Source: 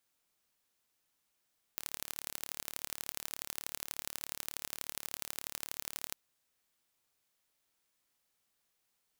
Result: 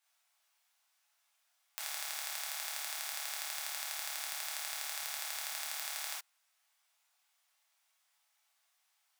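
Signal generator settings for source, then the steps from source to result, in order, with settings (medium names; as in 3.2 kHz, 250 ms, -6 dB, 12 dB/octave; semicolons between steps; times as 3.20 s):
pulse train 36.6 per s, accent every 3, -9.5 dBFS 4.37 s
steep high-pass 640 Hz 48 dB/octave; treble shelf 9.9 kHz -7 dB; gated-style reverb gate 90 ms flat, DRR -5.5 dB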